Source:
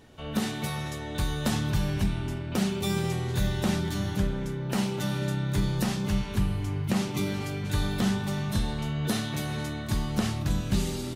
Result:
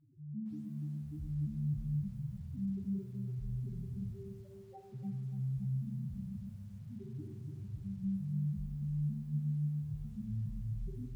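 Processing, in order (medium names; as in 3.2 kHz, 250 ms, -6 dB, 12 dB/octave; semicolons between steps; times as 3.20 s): 4.13–4.93 s: steep high-pass 390 Hz 48 dB/octave; 8.45–9.05 s: treble shelf 2.5 kHz +5 dB; peak limiter -24 dBFS, peak gain reduction 9.5 dB; 6.39–6.89 s: compressor with a negative ratio -37 dBFS, ratio -1; flange 0.28 Hz, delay 7.1 ms, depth 8.7 ms, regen -25%; loudest bins only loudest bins 1; distance through air 180 m; reverberation RT60 0.85 s, pre-delay 6 ms, DRR 6.5 dB; bit-crushed delay 290 ms, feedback 35%, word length 11-bit, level -7 dB; trim +1 dB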